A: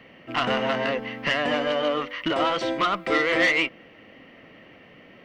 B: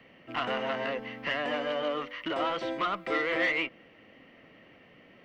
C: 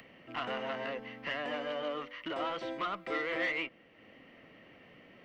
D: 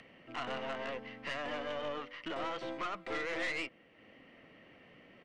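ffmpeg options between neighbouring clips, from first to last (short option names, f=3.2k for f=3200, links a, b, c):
-filter_complex "[0:a]acrossover=split=3700[a][b];[b]acompressor=threshold=-46dB:ratio=4:attack=1:release=60[c];[a][c]amix=inputs=2:normalize=0,acrossover=split=260[d][e];[d]alimiter=level_in=12dB:limit=-24dB:level=0:latency=1,volume=-12dB[f];[f][e]amix=inputs=2:normalize=0,volume=-6.5dB"
-af "acompressor=mode=upward:threshold=-44dB:ratio=2.5,volume=-5.5dB"
-af "aeval=exprs='(tanh(39.8*val(0)+0.6)-tanh(0.6))/39.8':c=same,aresample=22050,aresample=44100,volume=1dB"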